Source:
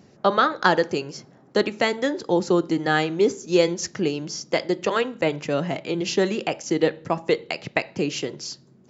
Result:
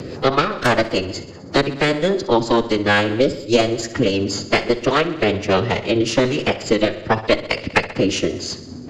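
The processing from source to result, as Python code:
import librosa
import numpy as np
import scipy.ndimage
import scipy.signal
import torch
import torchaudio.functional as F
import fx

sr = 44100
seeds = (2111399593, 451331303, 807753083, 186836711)

p1 = fx.cheby_harmonics(x, sr, harmonics=(2, 5, 6, 8), levels_db=(-25, -34, -12, -24), full_scale_db=-1.5)
p2 = fx.rider(p1, sr, range_db=5, speed_s=0.5)
p3 = p1 + F.gain(torch.from_numpy(p2), -2.0).numpy()
p4 = fx.pitch_keep_formants(p3, sr, semitones=-7.0)
p5 = fx.rotary(p4, sr, hz=5.0)
p6 = p5 + fx.echo_feedback(p5, sr, ms=64, feedback_pct=59, wet_db=-15.5, dry=0)
p7 = fx.band_squash(p6, sr, depth_pct=70)
y = F.gain(torch.from_numpy(p7), 1.0).numpy()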